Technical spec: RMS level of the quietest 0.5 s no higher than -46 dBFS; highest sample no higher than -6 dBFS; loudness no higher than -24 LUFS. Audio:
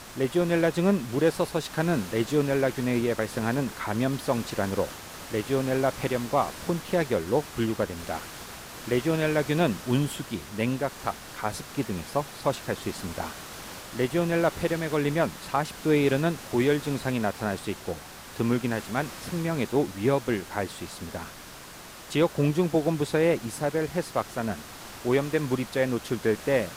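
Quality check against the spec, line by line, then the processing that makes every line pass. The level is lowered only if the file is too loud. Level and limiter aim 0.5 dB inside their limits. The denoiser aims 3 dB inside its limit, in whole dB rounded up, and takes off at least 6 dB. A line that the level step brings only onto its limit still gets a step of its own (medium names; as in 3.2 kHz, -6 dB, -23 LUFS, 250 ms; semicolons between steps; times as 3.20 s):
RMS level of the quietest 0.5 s -44 dBFS: fail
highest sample -11.0 dBFS: pass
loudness -27.5 LUFS: pass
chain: noise reduction 6 dB, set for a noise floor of -44 dBFS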